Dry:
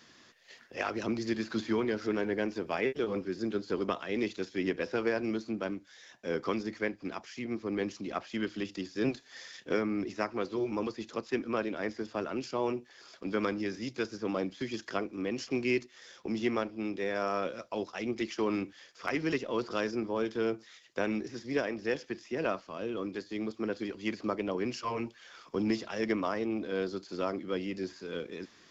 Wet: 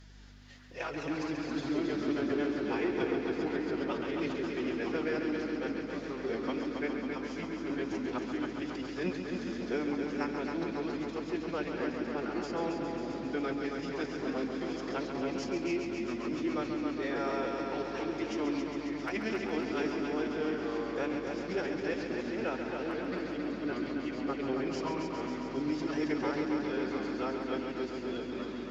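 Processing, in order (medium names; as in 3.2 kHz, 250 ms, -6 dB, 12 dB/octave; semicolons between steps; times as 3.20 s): ever faster or slower copies 218 ms, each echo -3 st, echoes 3, each echo -6 dB; formant-preserving pitch shift +5.5 st; hum 50 Hz, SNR 17 dB; multi-head delay 136 ms, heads first and second, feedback 73%, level -8 dB; trim -3.5 dB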